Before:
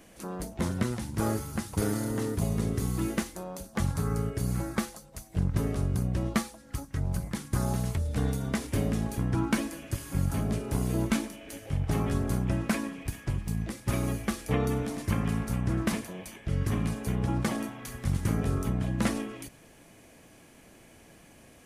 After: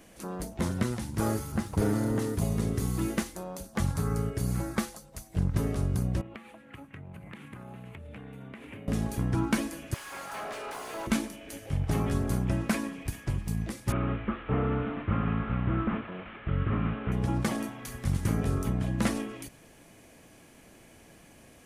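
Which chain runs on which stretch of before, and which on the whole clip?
0:01.52–0:02.19: high-shelf EQ 2,700 Hz −9.5 dB + leveller curve on the samples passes 1
0:06.21–0:08.88: high-pass filter 120 Hz + high shelf with overshoot 3,700 Hz −12.5 dB, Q 3 + downward compressor 12 to 1, threshold −40 dBFS
0:09.94–0:11.07: high-pass filter 780 Hz + mid-hump overdrive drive 23 dB, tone 1,500 Hz, clips at −27 dBFS
0:13.92–0:17.12: linear delta modulator 16 kbit/s, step −42 dBFS + parametric band 1,300 Hz +10.5 dB 0.31 octaves
whole clip: no processing

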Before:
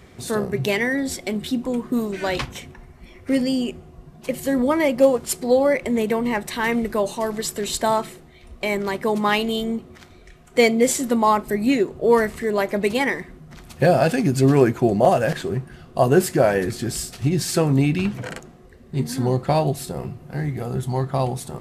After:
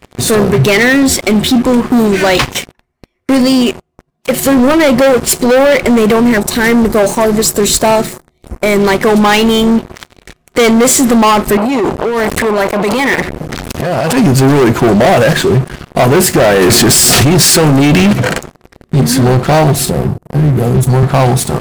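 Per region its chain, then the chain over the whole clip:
0:02.26–0:04.46: noise gate −41 dBFS, range −11 dB + low-shelf EQ 250 Hz −7 dB
0:06.20–0:08.84: parametric band 3,000 Hz −7.5 dB 0.72 octaves + notch on a step sequencer 5.7 Hz 870–3,500 Hz
0:11.57–0:14.17: compressor whose output falls as the input rises −26 dBFS + saturating transformer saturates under 1,600 Hz
0:16.61–0:18.13: high-pass filter 200 Hz 6 dB per octave + envelope flattener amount 100%
0:19.90–0:21.03: parametric band 2,300 Hz −14.5 dB 2 octaves + multiband upward and downward expander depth 40%
whole clip: leveller curve on the samples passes 5; brickwall limiter −6 dBFS; level +1.5 dB

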